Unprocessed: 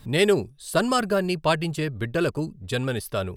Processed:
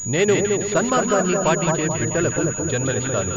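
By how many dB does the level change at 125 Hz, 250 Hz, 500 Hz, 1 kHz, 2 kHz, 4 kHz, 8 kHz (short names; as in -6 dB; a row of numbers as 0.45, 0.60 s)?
+4.5, +4.0, +4.0, +4.0, +3.5, -1.0, +16.5 dB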